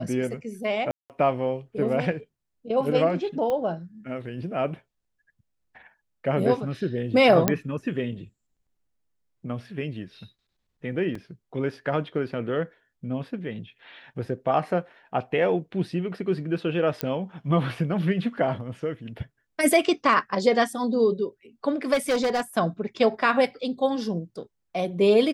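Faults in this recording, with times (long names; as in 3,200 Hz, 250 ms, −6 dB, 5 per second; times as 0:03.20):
0:00.91–0:01.10: drop-out 188 ms
0:03.50: click −17 dBFS
0:07.48: click −5 dBFS
0:11.15: drop-out 3.4 ms
0:17.01: click −10 dBFS
0:21.93–0:22.41: clipping −19.5 dBFS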